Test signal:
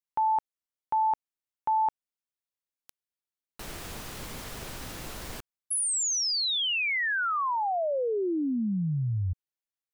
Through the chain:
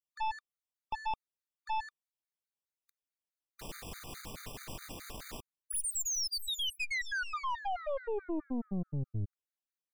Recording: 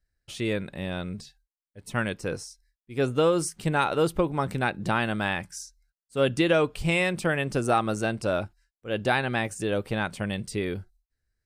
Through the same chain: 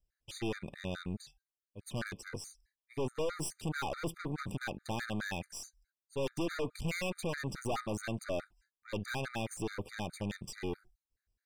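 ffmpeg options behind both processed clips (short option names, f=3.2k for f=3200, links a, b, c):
-af "aeval=exprs='(tanh(35.5*val(0)+0.6)-tanh(0.6))/35.5':c=same,afftfilt=real='re*gt(sin(2*PI*4.7*pts/sr)*(1-2*mod(floor(b*sr/1024/1200),2)),0)':imag='im*gt(sin(2*PI*4.7*pts/sr)*(1-2*mod(floor(b*sr/1024/1200),2)),0)':win_size=1024:overlap=0.75"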